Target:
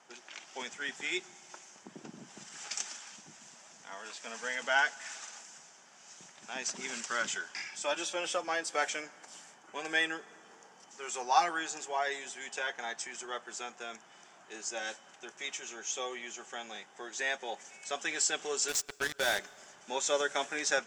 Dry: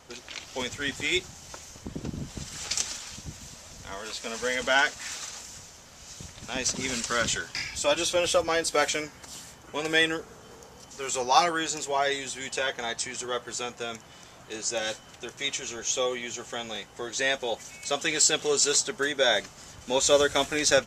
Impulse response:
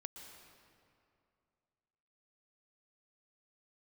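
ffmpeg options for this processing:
-filter_complex "[0:a]highpass=f=210:w=0.5412,highpass=f=210:w=1.3066,equalizer=f=270:t=q:w=4:g=-7,equalizer=f=500:t=q:w=4:g=-7,equalizer=f=810:t=q:w=4:g=4,equalizer=f=1.6k:t=q:w=4:g=4,equalizer=f=4.1k:t=q:w=4:g=-8,lowpass=f=8.6k:w=0.5412,lowpass=f=8.6k:w=1.3066,asettb=1/sr,asplit=3[a][b][c];[a]atrim=end=18.684[d];[b]atrim=start=18.68:end=19.39,asetpts=PTS-STARTPTS,afade=t=in:d=0.004:c=qsin,afade=t=out:st=0.706:d=0.004:c=qsin,acrusher=bits=3:mix=0:aa=0.5[e];[c]atrim=start=19.386[f];[d][e]acrossfade=d=0.004:c1=hsin:c2=qsin[g];[g][f]acrossfade=d=0.004:c1=qsin:c2=hsin,asplit=2[h][i];[1:a]atrim=start_sample=2205[j];[i][j]afir=irnorm=-1:irlink=0,volume=-14.5dB[k];[h][k]amix=inputs=2:normalize=0,volume=-8dB"

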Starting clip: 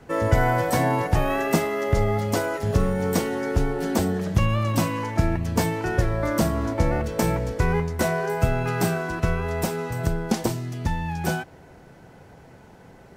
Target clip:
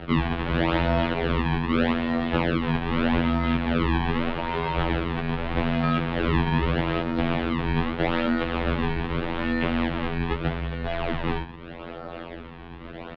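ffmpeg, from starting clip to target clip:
-filter_complex "[0:a]asettb=1/sr,asplit=3[a][b][c];[a]atrim=end=6.184[d];[b]atrim=start=6.18:end=6.83,asetpts=PTS-STARTPTS,afade=t=in:d=0.004:c=qsin,afade=t=out:st=0.646:d=0.004:c=qsin,equalizer=f=1.1k:t=o:w=0.37:g=14[e];[c]atrim=start=6.826[f];[d][e]acrossfade=d=0.004:c1=hsin:c2=qsin[g];[g][f]acrossfade=d=0.004:c1=qsin:c2=hsin,acrossover=split=710|1300[h][i][j];[i]acompressor=mode=upward:threshold=-37dB:ratio=2.5[k];[h][k][j]amix=inputs=3:normalize=0,asplit=5[l][m][n][o][p];[m]adelay=86,afreqshift=120,volume=-18.5dB[q];[n]adelay=172,afreqshift=240,volume=-24dB[r];[o]adelay=258,afreqshift=360,volume=-29.5dB[s];[p]adelay=344,afreqshift=480,volume=-35dB[t];[l][q][r][s][t]amix=inputs=5:normalize=0,asplit=2[u][v];[v]acompressor=threshold=-32dB:ratio=6,volume=-2dB[w];[u][w]amix=inputs=2:normalize=0,alimiter=limit=-11.5dB:level=0:latency=1:release=180,acrusher=samples=33:mix=1:aa=0.000001:lfo=1:lforange=52.8:lforate=0.81,asoftclip=type=hard:threshold=-20.5dB,afftfilt=real='hypot(re,im)*cos(PI*b)':imag='0':win_size=2048:overlap=0.75,highpass=f=220:t=q:w=0.5412,highpass=f=220:t=q:w=1.307,lowpass=f=3.6k:t=q:w=0.5176,lowpass=f=3.6k:t=q:w=0.7071,lowpass=f=3.6k:t=q:w=1.932,afreqshift=-190,volume=7dB"

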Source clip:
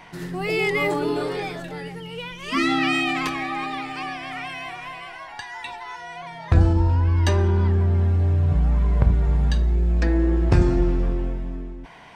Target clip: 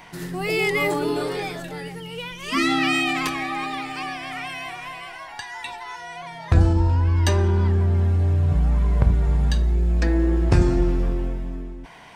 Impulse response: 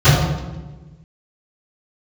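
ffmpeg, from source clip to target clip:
-af "highshelf=f=6.9k:g=9.5"

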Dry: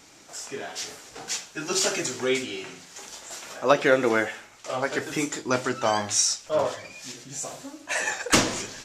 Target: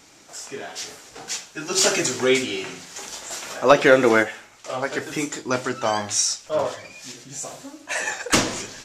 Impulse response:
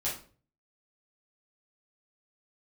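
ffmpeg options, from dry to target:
-filter_complex "[0:a]asplit=3[a][b][c];[a]afade=t=out:st=1.77:d=0.02[d];[b]acontrast=30,afade=t=in:st=1.77:d=0.02,afade=t=out:st=4.22:d=0.02[e];[c]afade=t=in:st=4.22:d=0.02[f];[d][e][f]amix=inputs=3:normalize=0,volume=1dB"

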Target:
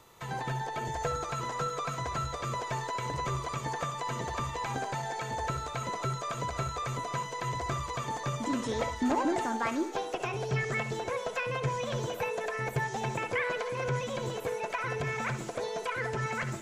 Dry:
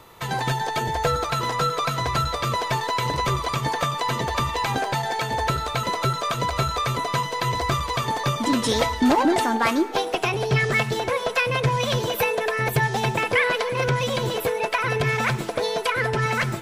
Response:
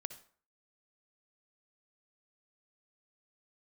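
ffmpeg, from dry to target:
-filter_complex "[1:a]atrim=start_sample=2205,afade=t=out:st=0.13:d=0.01,atrim=end_sample=6174[a];[0:a][a]afir=irnorm=-1:irlink=0,acrossover=split=2600[b][c];[c]acompressor=threshold=-47dB:ratio=4:attack=1:release=60[d];[b][d]amix=inputs=2:normalize=0,asetnsamples=n=441:p=0,asendcmd='0.85 equalizer g 14.5',equalizer=f=6.9k:w=1.7:g=7.5,volume=-7dB"

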